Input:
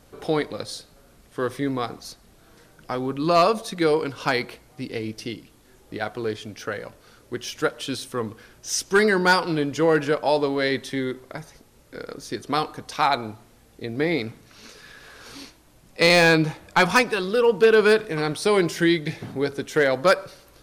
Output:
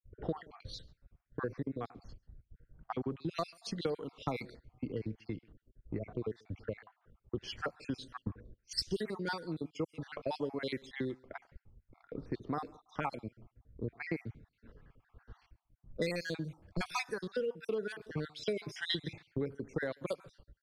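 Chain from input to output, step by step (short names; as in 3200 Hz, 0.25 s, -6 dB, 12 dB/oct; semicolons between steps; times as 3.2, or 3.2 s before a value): random spectral dropouts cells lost 52%; low-pass opened by the level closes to 1400 Hz, open at -21 dBFS; low shelf 310 Hz +9.5 dB; compressor 10:1, threshold -31 dBFS, peak gain reduction 21 dB; echo 0.14 s -24 dB; three-band expander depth 100%; gain -3.5 dB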